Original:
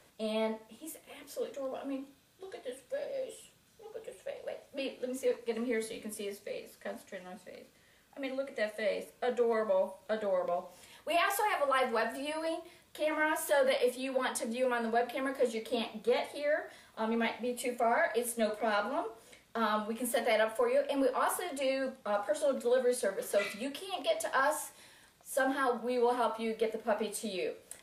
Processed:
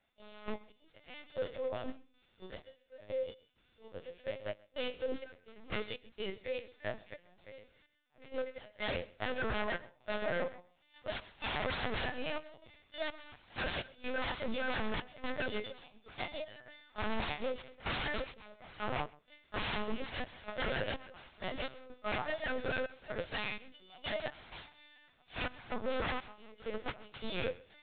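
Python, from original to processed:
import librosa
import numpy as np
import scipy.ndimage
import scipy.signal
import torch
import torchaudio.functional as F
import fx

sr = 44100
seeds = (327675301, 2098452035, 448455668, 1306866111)

p1 = fx.freq_snap(x, sr, grid_st=3)
p2 = fx.peak_eq(p1, sr, hz=120.0, db=9.5, octaves=1.2)
p3 = fx.hum_notches(p2, sr, base_hz=50, count=7)
p4 = 10.0 ** (-31.0 / 20.0) * (np.abs((p3 / 10.0 ** (-31.0 / 20.0) + 3.0) % 4.0 - 2.0) - 1.0)
p5 = fx.step_gate(p4, sr, bpm=63, pattern='..x.xxxx.xx', floor_db=-12.0, edge_ms=4.5)
p6 = fx.lpc_vocoder(p5, sr, seeds[0], excitation='pitch_kept', order=10)
p7 = p6 + fx.echo_single(p6, sr, ms=131, db=-17.0, dry=0)
p8 = fx.upward_expand(p7, sr, threshold_db=-52.0, expansion=1.5)
y = p8 * 10.0 ** (2.5 / 20.0)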